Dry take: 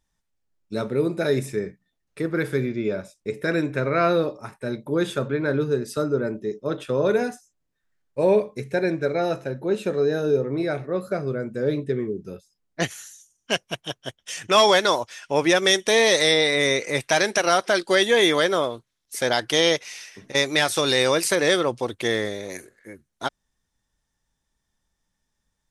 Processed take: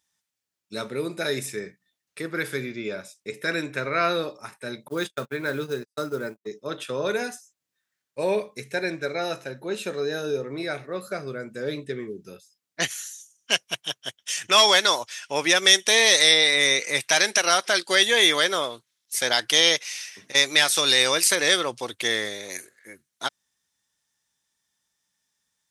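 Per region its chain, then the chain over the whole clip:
4.88–6.48 s: block-companded coder 7-bit + gate -28 dBFS, range -55 dB
whole clip: high-pass 110 Hz; tilt shelf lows -7 dB, about 1.2 kHz; trim -1 dB

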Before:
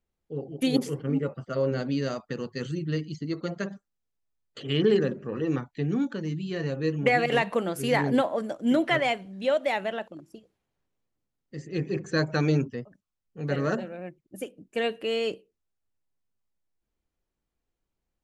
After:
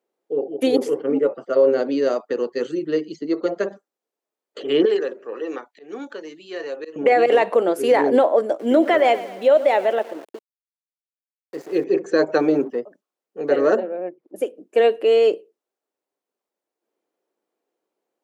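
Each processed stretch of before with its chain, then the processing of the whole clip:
4.85–6.96 s: high-pass 1.3 kHz 6 dB/octave + slow attack 157 ms
8.59–11.84 s: feedback delay 116 ms, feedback 51%, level -16.5 dB + small samples zeroed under -44.5 dBFS
12.38–12.78 s: companding laws mixed up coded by mu + treble shelf 2.1 kHz -10.5 dB + band-stop 450 Hz
13.80–14.36 s: low-pass 1.4 kHz 6 dB/octave + upward compressor, threshold -51 dBFS
whole clip: high-pass 390 Hz 24 dB/octave; tilt shelf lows +9.5 dB, about 750 Hz; loudness maximiser +16.5 dB; trim -6 dB

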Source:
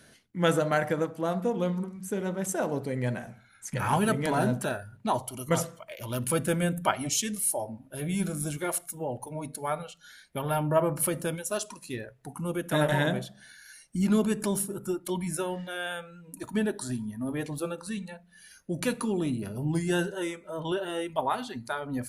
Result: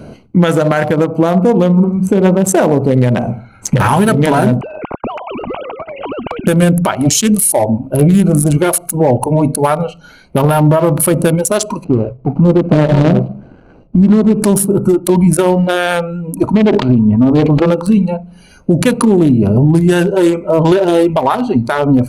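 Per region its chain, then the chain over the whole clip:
4.61–6.47 s: formants replaced by sine waves + compression 2.5:1, threshold -44 dBFS + spectrum-flattening compressor 4:1
11.84–14.38 s: median filter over 41 samples + distance through air 77 m
16.53–17.71 s: self-modulated delay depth 0.36 ms + low-pass 3.6 kHz 24 dB/octave + decay stretcher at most 60 dB/s
whole clip: local Wiener filter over 25 samples; compression, threshold -33 dBFS; loudness maximiser +29 dB; trim -1 dB

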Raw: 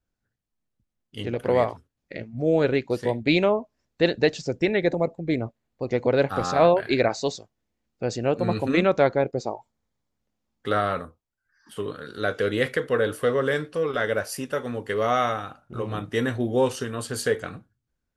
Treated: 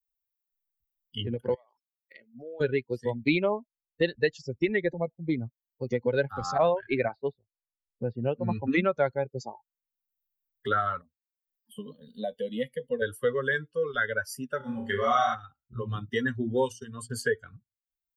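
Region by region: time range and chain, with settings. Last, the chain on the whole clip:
1.54–2.61 s: high-pass 390 Hz + treble shelf 7.9 kHz -4.5 dB + compression 5:1, threshold -36 dBFS
6.58–8.73 s: low-pass 4 kHz 24 dB/octave + level-controlled noise filter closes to 460 Hz, open at -14 dBFS
11.01–13.02 s: peaking EQ 5.7 kHz -11.5 dB 0.91 oct + static phaser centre 370 Hz, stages 6
14.57–15.35 s: band-stop 460 Hz, Q 5.5 + flutter echo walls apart 5.2 m, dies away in 0.73 s
16.15–17.10 s: expander -31 dBFS + hum notches 60/120/180/240 Hz
whole clip: expander on every frequency bin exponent 2; dynamic bell 1.7 kHz, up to +5 dB, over -41 dBFS, Q 1; three bands compressed up and down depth 70%

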